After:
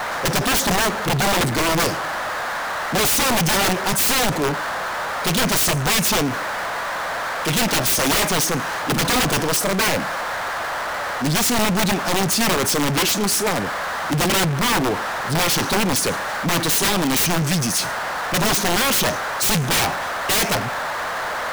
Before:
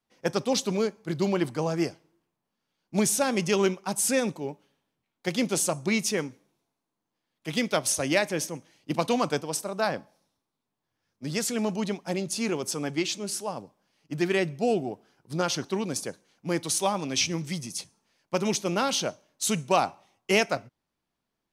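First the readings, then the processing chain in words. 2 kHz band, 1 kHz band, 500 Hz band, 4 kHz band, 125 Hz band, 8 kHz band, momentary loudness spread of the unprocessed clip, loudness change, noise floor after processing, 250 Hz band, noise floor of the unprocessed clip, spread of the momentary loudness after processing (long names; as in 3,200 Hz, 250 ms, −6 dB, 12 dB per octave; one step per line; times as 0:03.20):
+13.0 dB, +11.5 dB, +4.5 dB, +12.0 dB, +11.0 dB, +9.5 dB, 11 LU, +8.5 dB, −26 dBFS, +6.0 dB, −84 dBFS, 8 LU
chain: noise in a band 530–1,800 Hz −50 dBFS
wrap-around overflow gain 24 dB
power curve on the samples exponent 0.35
level +8.5 dB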